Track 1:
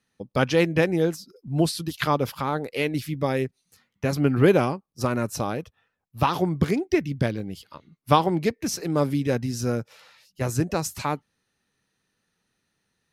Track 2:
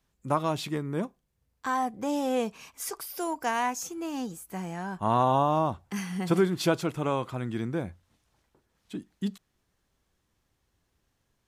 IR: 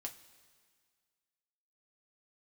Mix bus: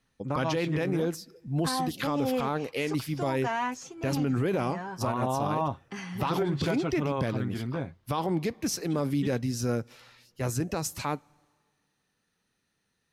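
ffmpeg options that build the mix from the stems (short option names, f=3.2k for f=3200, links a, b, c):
-filter_complex "[0:a]volume=-3dB,asplit=2[a][b];[b]volume=-14dB[c];[1:a]lowpass=4.7k,aecho=1:1:7.4:0.57,volume=-2dB[d];[2:a]atrim=start_sample=2205[e];[c][e]afir=irnorm=-1:irlink=0[f];[a][d][f]amix=inputs=3:normalize=0,alimiter=limit=-19.5dB:level=0:latency=1:release=30"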